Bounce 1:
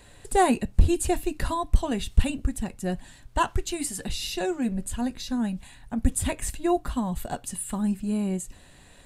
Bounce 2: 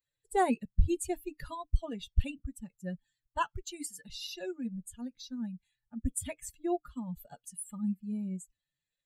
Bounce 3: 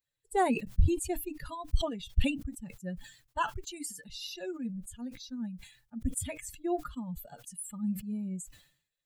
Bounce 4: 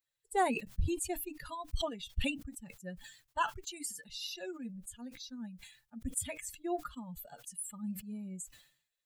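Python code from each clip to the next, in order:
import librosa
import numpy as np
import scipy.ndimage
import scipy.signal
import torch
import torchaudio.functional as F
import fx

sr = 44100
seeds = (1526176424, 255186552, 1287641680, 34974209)

y1 = fx.bin_expand(x, sr, power=2.0)
y1 = y1 * librosa.db_to_amplitude(-5.0)
y2 = fx.sustainer(y1, sr, db_per_s=100.0)
y3 = fx.low_shelf(y2, sr, hz=380.0, db=-9.0)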